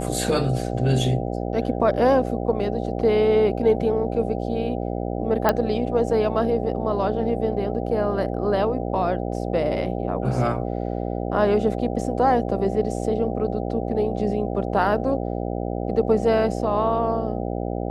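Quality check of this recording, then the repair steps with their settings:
buzz 60 Hz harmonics 13 -27 dBFS
5.49 pop -6 dBFS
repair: de-click; de-hum 60 Hz, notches 13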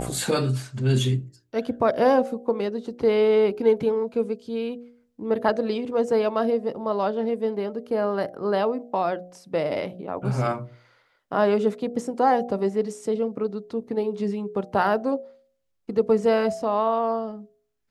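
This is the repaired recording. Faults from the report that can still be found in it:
none

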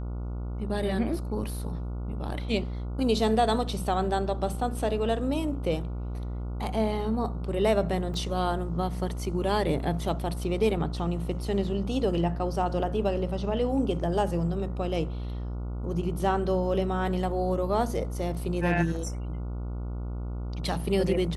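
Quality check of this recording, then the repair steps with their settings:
buzz 60 Hz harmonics 24 -33 dBFS
8.14 gap 2.4 ms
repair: de-hum 60 Hz, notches 24; interpolate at 8.14, 2.4 ms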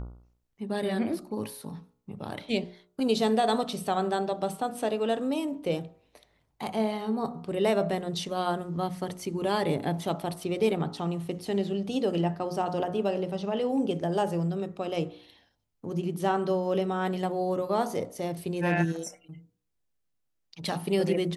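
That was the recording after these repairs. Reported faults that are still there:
none

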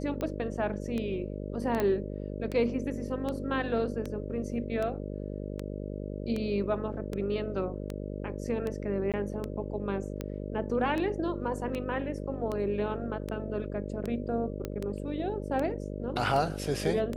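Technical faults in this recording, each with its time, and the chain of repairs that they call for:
buzz 50 Hz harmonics 12 -37 dBFS
tick 78 rpm -21 dBFS
1.8 pop -16 dBFS
9.12–9.14 gap 17 ms
14.65 pop -20 dBFS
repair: de-click; de-hum 50 Hz, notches 12; interpolate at 9.12, 17 ms

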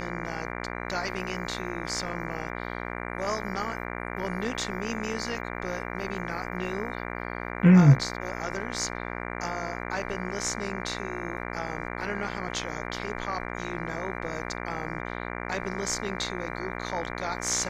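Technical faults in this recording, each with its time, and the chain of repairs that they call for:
buzz 60 Hz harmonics 39 -35 dBFS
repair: de-hum 60 Hz, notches 39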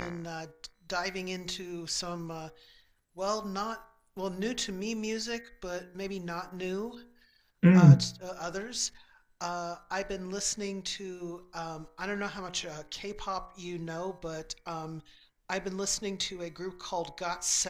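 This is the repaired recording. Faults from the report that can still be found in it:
none

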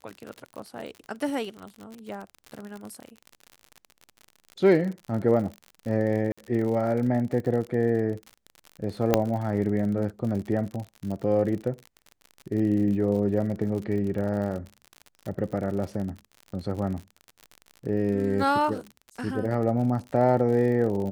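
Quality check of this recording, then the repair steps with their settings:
crackle 56/s -33 dBFS
6.32–6.38 gap 55 ms
9.14 pop -5 dBFS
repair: de-click; interpolate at 6.32, 55 ms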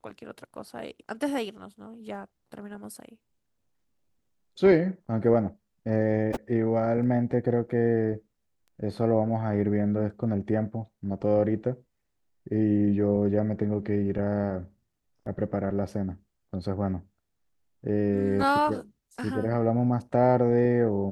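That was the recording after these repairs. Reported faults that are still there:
none

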